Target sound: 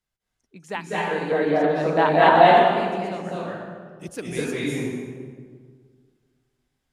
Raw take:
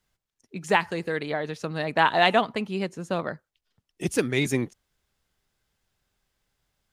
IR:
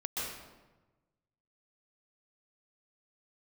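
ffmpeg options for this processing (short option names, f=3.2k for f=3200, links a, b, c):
-filter_complex "[0:a]asettb=1/sr,asplit=3[a][b][c];[a]atrim=end=1.114[d];[b]atrim=start=1.11:end=2.33,asetpts=PTS-STARTPTS,afade=t=in:d=0.004:c=qsin,afade=t=out:st=1.216:d=0.004:c=qsin,equalizer=f=470:w=0.35:g=12[e];[c]atrim=start=2.326[f];[d][e]acrossfade=d=0.004:c1=hsin:c2=qsin[g];[g][f]acrossfade=d=0.004:c1=qsin:c2=hsin[h];[1:a]atrim=start_sample=2205,asetrate=26901,aresample=44100[i];[h][i]afir=irnorm=-1:irlink=0,volume=-9dB"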